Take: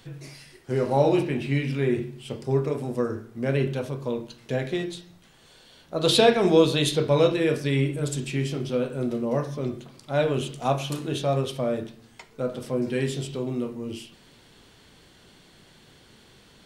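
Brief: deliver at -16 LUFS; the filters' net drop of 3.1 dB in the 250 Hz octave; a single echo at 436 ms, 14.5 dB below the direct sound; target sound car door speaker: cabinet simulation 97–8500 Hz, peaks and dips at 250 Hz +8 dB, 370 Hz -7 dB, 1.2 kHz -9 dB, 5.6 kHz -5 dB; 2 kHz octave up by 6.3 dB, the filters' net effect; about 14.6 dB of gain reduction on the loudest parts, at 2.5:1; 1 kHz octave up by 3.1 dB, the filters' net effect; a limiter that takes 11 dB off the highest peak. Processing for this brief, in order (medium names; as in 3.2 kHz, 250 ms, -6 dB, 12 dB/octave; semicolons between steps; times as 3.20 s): peaking EQ 250 Hz -7.5 dB; peaking EQ 1 kHz +6 dB; peaking EQ 2 kHz +7.5 dB; compression 2.5:1, threshold -35 dBFS; peak limiter -29.5 dBFS; cabinet simulation 97–8500 Hz, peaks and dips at 250 Hz +8 dB, 370 Hz -7 dB, 1.2 kHz -9 dB, 5.6 kHz -5 dB; delay 436 ms -14.5 dB; trim +24.5 dB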